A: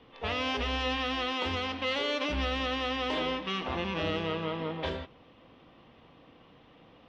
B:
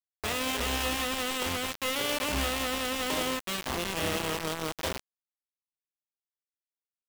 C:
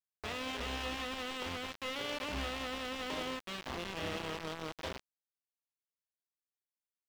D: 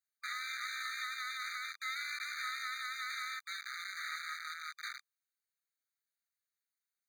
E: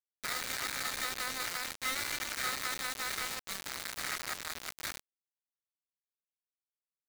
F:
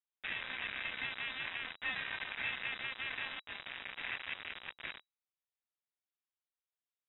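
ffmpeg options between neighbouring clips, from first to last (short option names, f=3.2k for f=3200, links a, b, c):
-af "acrusher=bits=4:mix=0:aa=0.000001"
-filter_complex "[0:a]acrossover=split=5700[a][b];[b]acompressor=threshold=-52dB:ratio=4:attack=1:release=60[c];[a][c]amix=inputs=2:normalize=0,volume=-8dB"
-af "afftfilt=real='re*eq(mod(floor(b*sr/1024/1200),2),1)':imag='im*eq(mod(floor(b*sr/1024/1200),2),1)':win_size=1024:overlap=0.75,volume=5dB"
-af "acrusher=bits=5:mix=0:aa=0.000001,volume=3.5dB"
-af "lowpass=f=3.3k:t=q:w=0.5098,lowpass=f=3.3k:t=q:w=0.6013,lowpass=f=3.3k:t=q:w=0.9,lowpass=f=3.3k:t=q:w=2.563,afreqshift=-3900,volume=-1.5dB"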